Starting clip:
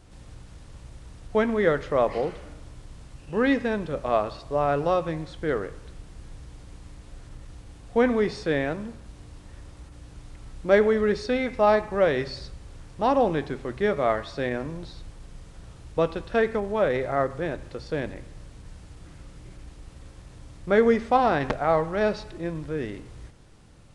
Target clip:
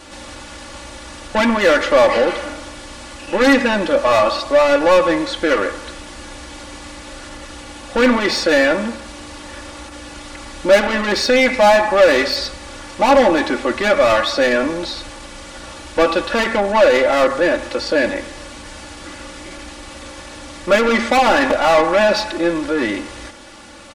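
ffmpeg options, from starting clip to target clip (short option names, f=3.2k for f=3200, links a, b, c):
-filter_complex "[0:a]asplit=2[a][b];[b]highpass=f=720:p=1,volume=26dB,asoftclip=type=tanh:threshold=-7.5dB[c];[a][c]amix=inputs=2:normalize=0,lowpass=f=6.9k:p=1,volume=-6dB,aecho=1:1:3.5:0.92"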